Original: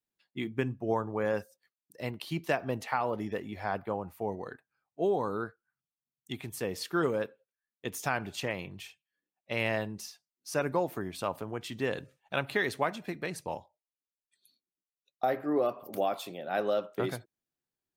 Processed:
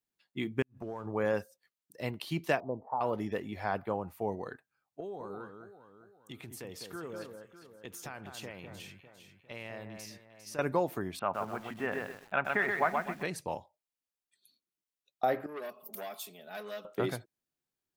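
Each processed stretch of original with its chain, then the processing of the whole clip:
0.62–1.06 compressor 5:1, threshold -40 dBFS + sample leveller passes 1 + flipped gate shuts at -29 dBFS, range -39 dB
2.6–3.01 Chebyshev low-pass 1000 Hz, order 5 + low shelf 200 Hz -10 dB
5–10.59 compressor 2.5:1, threshold -45 dBFS + echo with dull and thin repeats by turns 0.201 s, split 1800 Hz, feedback 64%, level -6 dB
11.19–13.23 speaker cabinet 110–2400 Hz, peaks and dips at 130 Hz -8 dB, 310 Hz -8 dB, 490 Hz -8 dB, 720 Hz +4 dB, 1400 Hz +5 dB + lo-fi delay 0.127 s, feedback 35%, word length 9-bit, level -3.5 dB
15.46–16.85 pre-emphasis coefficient 0.8 + comb 4.7 ms, depth 93% + core saturation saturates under 1600 Hz
whole clip: dry

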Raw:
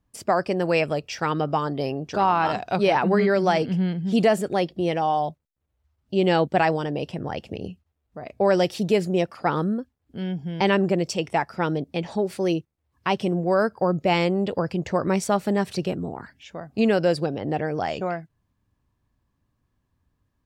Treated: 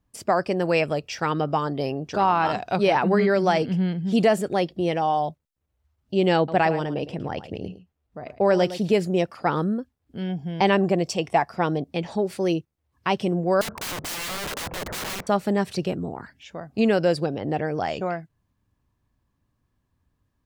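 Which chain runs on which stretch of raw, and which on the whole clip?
6.37–8.93 high shelf 5300 Hz -5.5 dB + echo 0.11 s -13.5 dB
10.29–11.9 bell 1300 Hz -4 dB 0.25 oct + small resonant body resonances 730/1100 Hz, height 7 dB, ringing for 25 ms
13.61–15.27 power-law curve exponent 0.7 + LPF 1300 Hz 24 dB/oct + wrapped overs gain 26.5 dB
whole clip: dry

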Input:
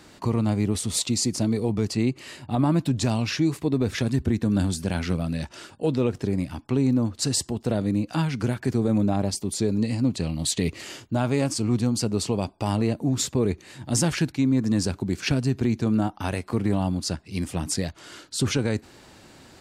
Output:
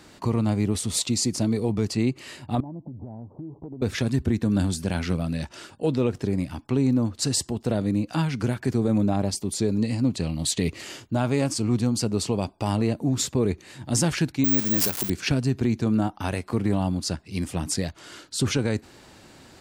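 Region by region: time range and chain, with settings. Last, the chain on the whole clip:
2.6–3.82 steep low-pass 940 Hz 72 dB/oct + compressor 8:1, threshold -34 dBFS
14.44–15.1 switching spikes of -21 dBFS + low shelf 170 Hz -11.5 dB + careless resampling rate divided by 2×, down none, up zero stuff
whole clip: dry

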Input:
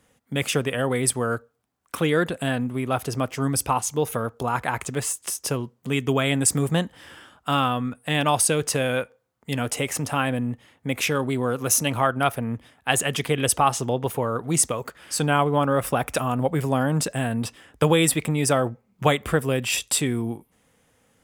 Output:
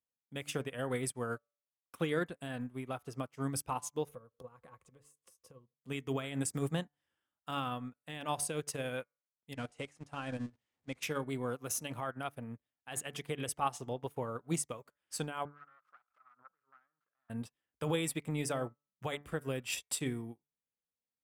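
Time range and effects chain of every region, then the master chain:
4.08–5.74 low shelf 230 Hz +10.5 dB + compressor 10:1, threshold -31 dBFS + small resonant body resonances 510/1100 Hz, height 16 dB, ringing for 70 ms
9.54–11.03 zero-crossing step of -32 dBFS + LPF 8900 Hz 24 dB/oct + level quantiser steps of 12 dB
15.45–17.3 self-modulated delay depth 0.53 ms + band-pass 1300 Hz, Q 7.7 + backwards sustainer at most 110 dB/s
whole clip: de-hum 145 Hz, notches 16; limiter -13.5 dBFS; upward expander 2.5:1, over -43 dBFS; gain -7.5 dB

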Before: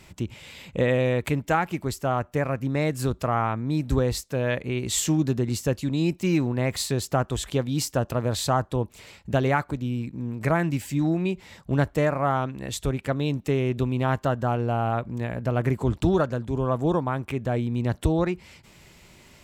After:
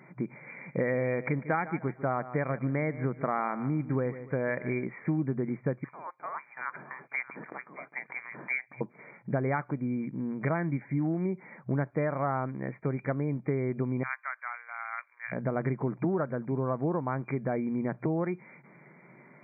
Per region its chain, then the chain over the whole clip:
0.47–4.85 high shelf 2400 Hz +7.5 dB + feedback echo 0.148 s, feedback 29%, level -17 dB
5.84–8.81 echo 0.623 s -16.5 dB + inverted band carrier 3500 Hz
14.03–15.32 sample sorter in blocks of 8 samples + inverse Chebyshev high-pass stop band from 230 Hz, stop band 80 dB + resonant high shelf 3700 Hz -13 dB, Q 3
whole clip: FFT band-pass 120–2400 Hz; compressor 3:1, threshold -27 dBFS

